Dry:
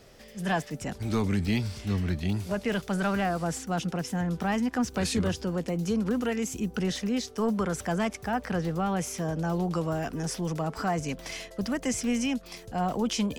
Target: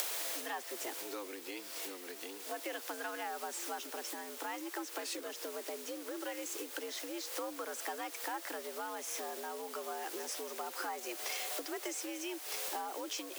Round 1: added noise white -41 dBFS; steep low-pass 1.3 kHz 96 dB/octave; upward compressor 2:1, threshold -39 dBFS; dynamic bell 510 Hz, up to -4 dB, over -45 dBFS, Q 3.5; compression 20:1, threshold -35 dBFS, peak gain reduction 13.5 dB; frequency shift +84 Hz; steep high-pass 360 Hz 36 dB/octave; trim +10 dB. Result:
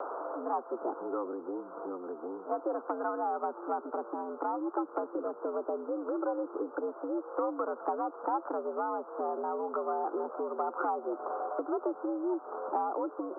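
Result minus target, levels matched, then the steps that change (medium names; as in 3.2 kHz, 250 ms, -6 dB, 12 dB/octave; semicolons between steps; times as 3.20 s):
compression: peak gain reduction -9 dB; 1 kHz band +4.5 dB
change: compression 20:1, threshold -44.5 dBFS, peak gain reduction 23 dB; remove: steep low-pass 1.3 kHz 96 dB/octave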